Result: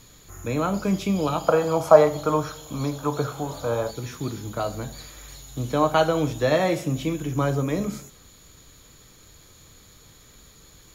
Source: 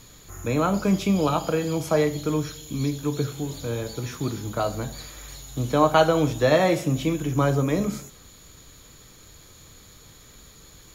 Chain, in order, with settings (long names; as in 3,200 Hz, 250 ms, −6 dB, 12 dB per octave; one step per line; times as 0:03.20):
0:01.48–0:03.91: flat-topped bell 860 Hz +13.5 dB
level −2 dB